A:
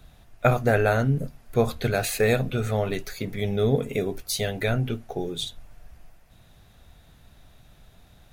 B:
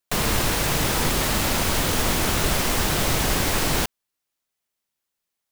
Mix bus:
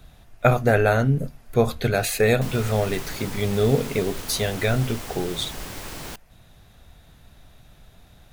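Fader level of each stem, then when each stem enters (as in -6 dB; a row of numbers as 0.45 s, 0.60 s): +2.5 dB, -13.5 dB; 0.00 s, 2.30 s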